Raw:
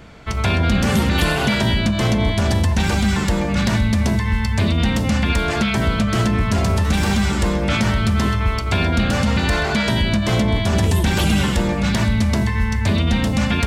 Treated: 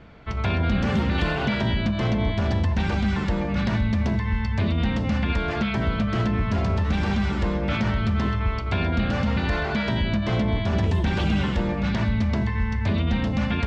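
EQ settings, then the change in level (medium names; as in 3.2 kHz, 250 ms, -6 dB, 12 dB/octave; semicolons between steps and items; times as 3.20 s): distance through air 190 m; -5.0 dB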